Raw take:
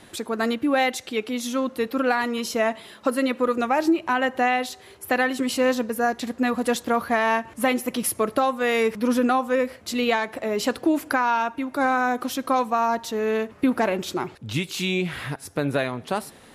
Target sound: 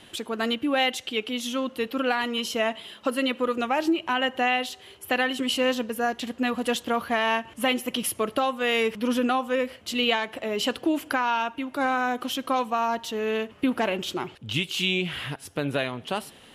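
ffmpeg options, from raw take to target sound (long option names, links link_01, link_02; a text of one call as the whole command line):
ffmpeg -i in.wav -af "equalizer=frequency=3000:width_type=o:width=0.39:gain=12.5,volume=-3.5dB" out.wav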